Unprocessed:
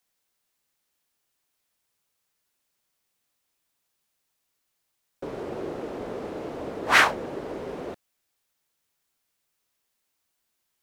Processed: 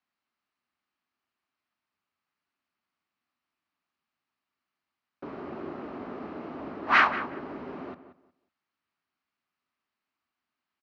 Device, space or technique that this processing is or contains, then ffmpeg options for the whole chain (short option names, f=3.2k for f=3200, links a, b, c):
guitar cabinet: -filter_complex "[0:a]highpass=76,equalizer=f=120:t=q:w=4:g=-7,equalizer=f=250:t=q:w=4:g=5,equalizer=f=490:t=q:w=4:g=-10,equalizer=f=1.2k:t=q:w=4:g=6,equalizer=f=3.5k:t=q:w=4:g=-7,lowpass=f=4k:w=0.5412,lowpass=f=4k:w=1.3066,asplit=2[a][b];[b]adelay=182,lowpass=f=2.5k:p=1,volume=-12dB,asplit=2[c][d];[d]adelay=182,lowpass=f=2.5k:p=1,volume=0.22,asplit=2[e][f];[f]adelay=182,lowpass=f=2.5k:p=1,volume=0.22[g];[a][c][e][g]amix=inputs=4:normalize=0,volume=-3.5dB"